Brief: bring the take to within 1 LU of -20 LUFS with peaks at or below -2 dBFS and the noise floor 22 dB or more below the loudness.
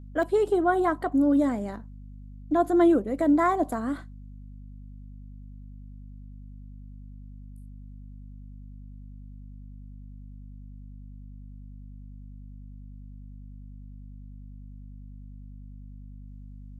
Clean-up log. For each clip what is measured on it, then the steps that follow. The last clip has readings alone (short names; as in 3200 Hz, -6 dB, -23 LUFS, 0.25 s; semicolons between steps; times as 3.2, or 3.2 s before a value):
dropouts 1; longest dropout 1.2 ms; hum 50 Hz; harmonics up to 250 Hz; hum level -41 dBFS; loudness -24.0 LUFS; peak -10.5 dBFS; loudness target -20.0 LUFS
-> interpolate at 0.23, 1.2 ms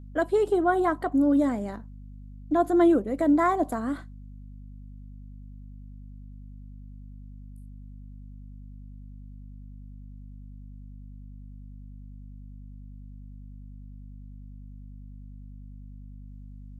dropouts 0; hum 50 Hz; harmonics up to 250 Hz; hum level -41 dBFS
-> notches 50/100/150/200/250 Hz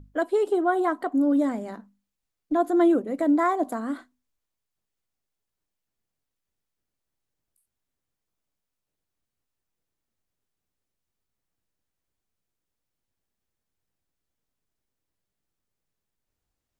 hum none; loudness -24.0 LUFS; peak -10.5 dBFS; loudness target -20.0 LUFS
-> gain +4 dB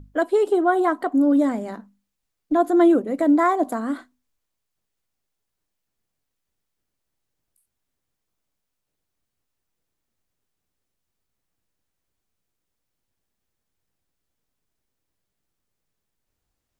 loudness -20.0 LUFS; peak -6.5 dBFS; noise floor -80 dBFS